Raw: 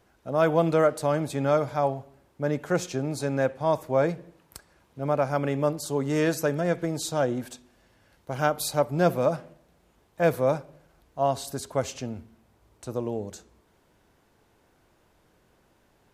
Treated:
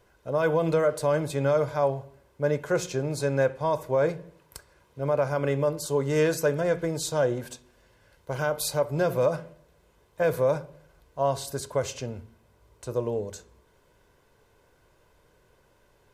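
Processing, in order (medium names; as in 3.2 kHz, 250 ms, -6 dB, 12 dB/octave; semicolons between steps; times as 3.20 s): peak limiter -15 dBFS, peak gain reduction 6.5 dB; reverberation RT60 0.30 s, pre-delay 3 ms, DRR 13.5 dB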